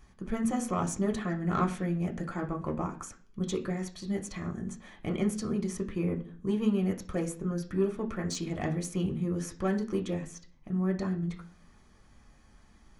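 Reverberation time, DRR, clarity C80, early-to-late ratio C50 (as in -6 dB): 0.45 s, 2.0 dB, 18.5 dB, 14.0 dB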